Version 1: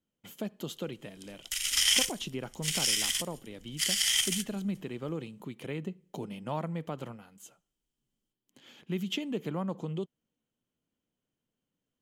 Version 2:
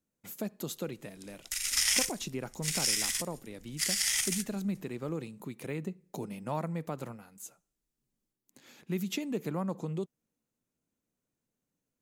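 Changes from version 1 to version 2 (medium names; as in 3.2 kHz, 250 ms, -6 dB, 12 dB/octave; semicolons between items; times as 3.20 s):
speech: add treble shelf 5.9 kHz +9 dB; master: add peaking EQ 3.1 kHz -15 dB 0.21 oct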